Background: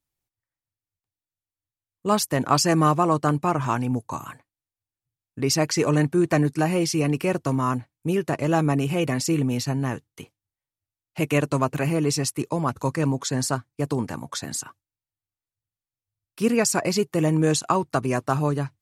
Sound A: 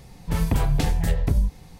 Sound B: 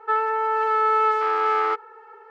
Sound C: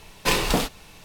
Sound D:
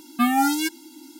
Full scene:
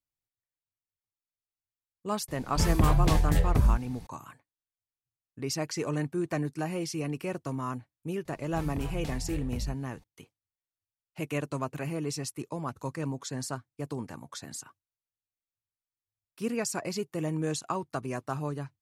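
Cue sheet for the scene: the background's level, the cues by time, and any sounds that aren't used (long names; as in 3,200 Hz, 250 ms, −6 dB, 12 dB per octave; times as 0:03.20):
background −10.5 dB
0:02.28: mix in A −2 dB
0:08.25: mix in A −14.5 dB
not used: B, C, D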